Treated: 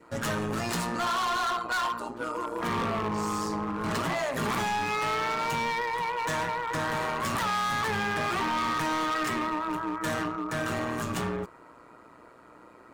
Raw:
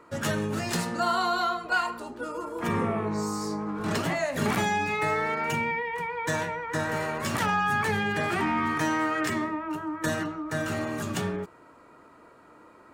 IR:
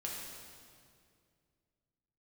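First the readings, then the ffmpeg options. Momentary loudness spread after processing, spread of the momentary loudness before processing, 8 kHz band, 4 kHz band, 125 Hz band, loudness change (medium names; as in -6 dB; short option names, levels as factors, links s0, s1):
4 LU, 7 LU, -1.0 dB, +1.0 dB, -3.0 dB, -1.0 dB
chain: -af "tremolo=f=120:d=0.667,adynamicequalizer=threshold=0.00562:dfrequency=1100:dqfactor=2.3:tfrequency=1100:tqfactor=2.3:attack=5:release=100:ratio=0.375:range=4:mode=boostabove:tftype=bell,volume=29.9,asoftclip=hard,volume=0.0335,volume=1.5"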